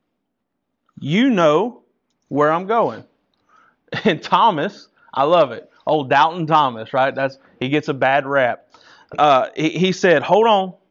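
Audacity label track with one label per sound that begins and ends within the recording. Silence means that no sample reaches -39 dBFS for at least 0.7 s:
0.970000	3.020000	sound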